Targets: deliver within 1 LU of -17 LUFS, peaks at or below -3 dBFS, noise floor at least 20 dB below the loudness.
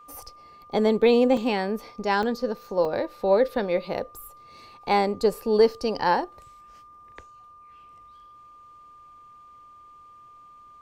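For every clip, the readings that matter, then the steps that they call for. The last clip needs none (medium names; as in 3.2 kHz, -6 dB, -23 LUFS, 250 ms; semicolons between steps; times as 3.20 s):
dropouts 3; longest dropout 2.7 ms; steady tone 1.2 kHz; tone level -47 dBFS; loudness -24.0 LUFS; peak level -8.0 dBFS; loudness target -17.0 LUFS
-> interpolate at 1.37/2.23/2.85 s, 2.7 ms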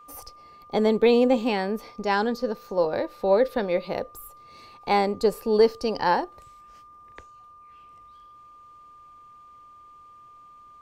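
dropouts 0; steady tone 1.2 kHz; tone level -47 dBFS
-> band-stop 1.2 kHz, Q 30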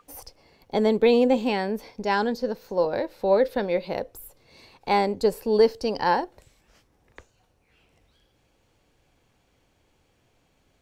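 steady tone not found; loudness -24.0 LUFS; peak level -7.5 dBFS; loudness target -17.0 LUFS
-> trim +7 dB; peak limiter -3 dBFS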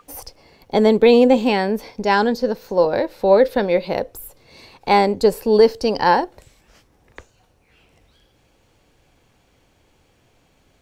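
loudness -17.0 LUFS; peak level -3.0 dBFS; noise floor -60 dBFS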